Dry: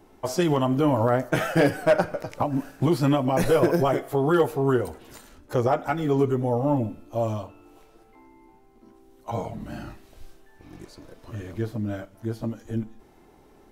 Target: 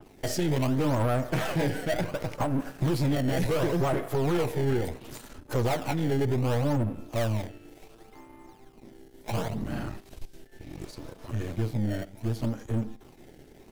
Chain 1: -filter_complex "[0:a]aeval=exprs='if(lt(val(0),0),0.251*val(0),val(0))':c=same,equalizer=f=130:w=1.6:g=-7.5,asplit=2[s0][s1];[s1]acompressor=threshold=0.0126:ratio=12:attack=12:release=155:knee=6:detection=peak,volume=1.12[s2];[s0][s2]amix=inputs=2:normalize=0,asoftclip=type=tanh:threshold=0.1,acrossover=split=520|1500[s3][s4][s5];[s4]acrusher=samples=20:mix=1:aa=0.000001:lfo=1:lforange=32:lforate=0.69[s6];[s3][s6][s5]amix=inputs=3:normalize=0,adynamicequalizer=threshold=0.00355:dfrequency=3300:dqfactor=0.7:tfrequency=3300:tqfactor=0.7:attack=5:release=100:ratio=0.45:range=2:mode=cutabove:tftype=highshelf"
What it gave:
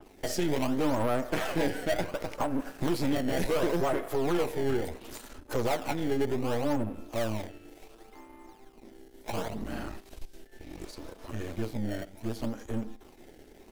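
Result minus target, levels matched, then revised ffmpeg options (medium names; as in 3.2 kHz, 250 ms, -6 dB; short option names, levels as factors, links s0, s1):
compression: peak gain reduction +8.5 dB; 125 Hz band -7.0 dB
-filter_complex "[0:a]aeval=exprs='if(lt(val(0),0),0.251*val(0),val(0))':c=same,equalizer=f=130:w=1.6:g=4,asplit=2[s0][s1];[s1]acompressor=threshold=0.0376:ratio=12:attack=12:release=155:knee=6:detection=peak,volume=1.12[s2];[s0][s2]amix=inputs=2:normalize=0,asoftclip=type=tanh:threshold=0.1,acrossover=split=520|1500[s3][s4][s5];[s4]acrusher=samples=20:mix=1:aa=0.000001:lfo=1:lforange=32:lforate=0.69[s6];[s3][s6][s5]amix=inputs=3:normalize=0,adynamicequalizer=threshold=0.00355:dfrequency=3300:dqfactor=0.7:tfrequency=3300:tqfactor=0.7:attack=5:release=100:ratio=0.45:range=2:mode=cutabove:tftype=highshelf"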